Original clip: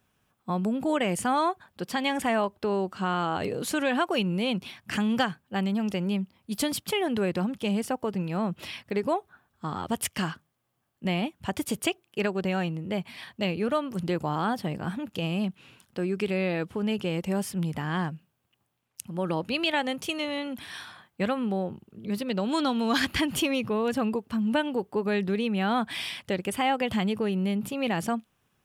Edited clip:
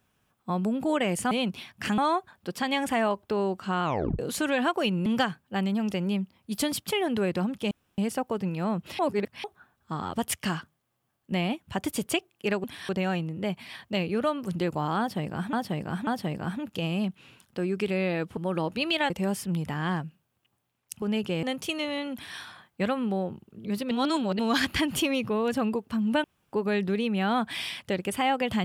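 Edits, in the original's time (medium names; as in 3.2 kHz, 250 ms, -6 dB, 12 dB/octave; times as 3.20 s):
3.17 s: tape stop 0.35 s
4.39–5.06 s: move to 1.31 s
7.71 s: insert room tone 0.27 s
8.72–9.17 s: reverse
14.47–15.01 s: loop, 3 plays
16.77–17.18 s: swap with 19.10–19.83 s
20.53–20.78 s: copy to 12.37 s
22.31–22.79 s: reverse
24.64–24.93 s: room tone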